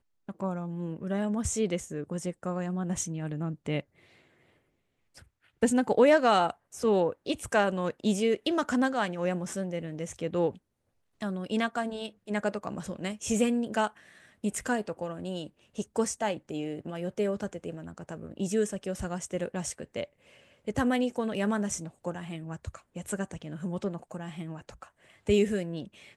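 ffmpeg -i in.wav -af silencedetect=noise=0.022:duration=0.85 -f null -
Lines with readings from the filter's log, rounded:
silence_start: 3.80
silence_end: 5.63 | silence_duration: 1.83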